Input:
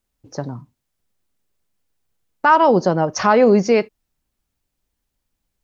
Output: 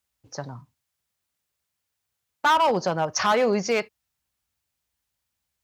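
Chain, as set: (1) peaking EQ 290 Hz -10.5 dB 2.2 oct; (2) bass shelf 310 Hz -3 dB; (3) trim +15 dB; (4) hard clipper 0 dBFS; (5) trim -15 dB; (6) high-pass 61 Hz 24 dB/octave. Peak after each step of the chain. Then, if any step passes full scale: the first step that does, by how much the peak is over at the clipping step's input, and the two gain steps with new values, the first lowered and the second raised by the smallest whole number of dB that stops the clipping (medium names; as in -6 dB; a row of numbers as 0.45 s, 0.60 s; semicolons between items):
-5.0 dBFS, -5.0 dBFS, +10.0 dBFS, 0.0 dBFS, -15.0 dBFS, -12.5 dBFS; step 3, 10.0 dB; step 3 +5 dB, step 5 -5 dB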